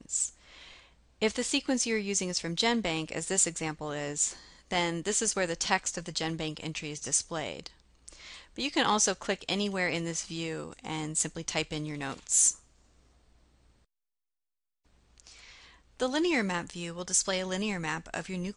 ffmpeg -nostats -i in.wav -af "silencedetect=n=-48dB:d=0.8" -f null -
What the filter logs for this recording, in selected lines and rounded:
silence_start: 12.59
silence_end: 15.18 | silence_duration: 2.59